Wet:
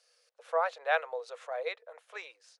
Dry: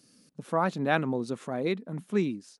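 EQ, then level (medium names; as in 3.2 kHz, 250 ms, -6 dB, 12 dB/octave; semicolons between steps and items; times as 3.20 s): rippled Chebyshev high-pass 470 Hz, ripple 3 dB; distance through air 56 m; 0.0 dB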